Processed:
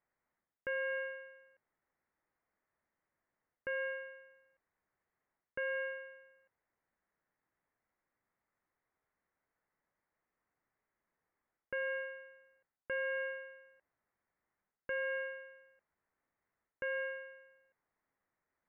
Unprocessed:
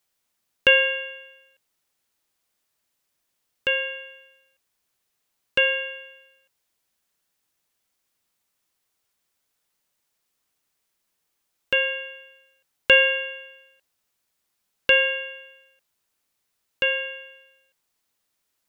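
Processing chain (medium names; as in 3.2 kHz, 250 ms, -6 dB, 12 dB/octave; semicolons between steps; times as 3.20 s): reverse; compression 12:1, threshold -28 dBFS, peak gain reduction 18.5 dB; reverse; elliptic low-pass 2 kHz, stop band 60 dB; trim -2 dB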